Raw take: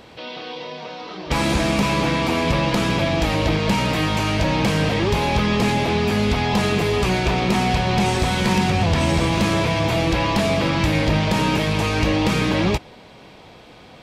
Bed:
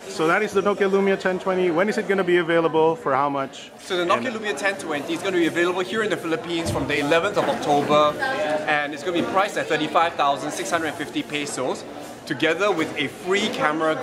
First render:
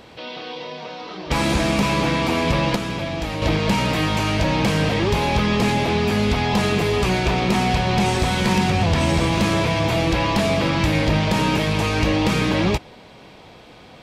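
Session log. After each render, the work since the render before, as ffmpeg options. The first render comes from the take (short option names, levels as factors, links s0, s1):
-filter_complex "[0:a]asplit=3[s0][s1][s2];[s0]atrim=end=2.762[s3];[s1]atrim=start=2.758:end=3.422,asetpts=PTS-STARTPTS,volume=0.501[s4];[s2]atrim=start=3.418[s5];[s3][s4]acrossfade=d=0.004:c1=hsin:c2=hsin[s6];[s6][s5]acrossfade=d=0.004:c1=hsin:c2=hsin"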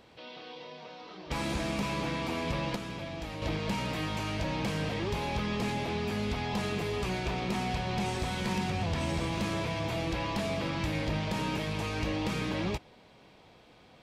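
-af "volume=0.224"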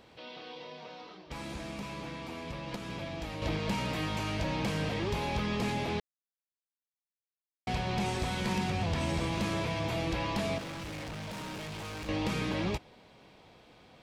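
-filter_complex "[0:a]asettb=1/sr,asplit=3[s0][s1][s2];[s0]atrim=end=10.584[s3];[s1]atrim=start=10.58:end=12.09,asetpts=PTS-STARTPTS,afade=t=in:d=0.004:c=qsin,afade=t=out:st=1.506:d=0.004:c=qsin,asoftclip=type=hard:threshold=0.0112[s4];[s2]atrim=start=12.086[s5];[s3][s4]acrossfade=d=0.004:c1=hsin:c2=qsin[s6];[s6][s5]acrossfade=d=0.004:c1=qsin:c2=hsin,asplit=5[s7][s8][s9][s10][s11];[s7]atrim=end=1.27,asetpts=PTS-STARTPTS,afade=t=out:st=1:d=0.27:silence=0.398107[s12];[s8]atrim=start=1.27:end=2.66,asetpts=PTS-STARTPTS,volume=0.398[s13];[s9]atrim=start=2.66:end=6,asetpts=PTS-STARTPTS,afade=t=in:d=0.27:silence=0.398107,afade=t=out:st=3.336:d=0.004:c=hsin[s14];[s10]atrim=start=6:end=7.67,asetpts=PTS-STARTPTS,volume=0[s15];[s11]atrim=start=7.67,asetpts=PTS-STARTPTS,afade=t=in:d=0.004:c=hsin[s16];[s12][s13][s14][s15][s16]concat=n=5:v=0:a=1"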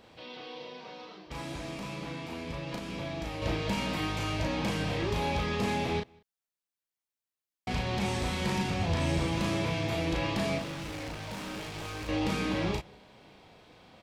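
-filter_complex "[0:a]asplit=2[s0][s1];[s1]adelay=36,volume=0.708[s2];[s0][s2]amix=inputs=2:normalize=0,asplit=2[s3][s4];[s4]adelay=192.4,volume=0.0398,highshelf=f=4000:g=-4.33[s5];[s3][s5]amix=inputs=2:normalize=0"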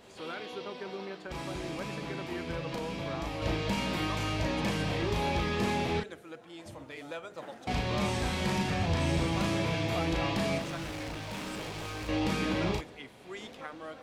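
-filter_complex "[1:a]volume=0.0794[s0];[0:a][s0]amix=inputs=2:normalize=0"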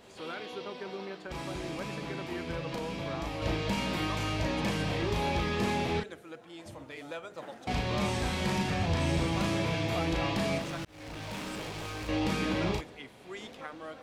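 -filter_complex "[0:a]asplit=2[s0][s1];[s0]atrim=end=10.85,asetpts=PTS-STARTPTS,afade=t=out:st=10.846:d=0.004:c=hsin[s2];[s1]atrim=start=10.85,asetpts=PTS-STARTPTS,afade=t=in:d=0.4[s3];[s2][s3]concat=n=2:v=0:a=1"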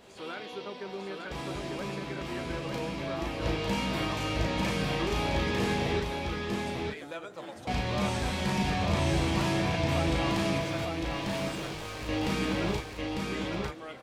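-filter_complex "[0:a]asplit=2[s0][s1];[s1]adelay=15,volume=0.266[s2];[s0][s2]amix=inputs=2:normalize=0,aecho=1:1:900:0.668"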